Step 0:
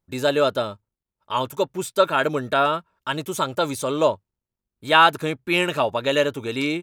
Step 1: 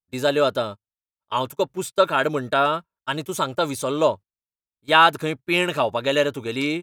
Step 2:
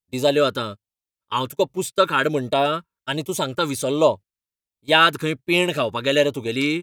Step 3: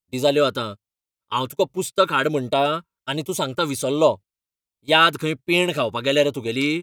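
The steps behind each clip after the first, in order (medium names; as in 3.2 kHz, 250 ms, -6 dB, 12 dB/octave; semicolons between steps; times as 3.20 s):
gate -32 dBFS, range -21 dB
LFO notch sine 1.3 Hz 650–1600 Hz; trim +3 dB
band-stop 1.7 kHz, Q 11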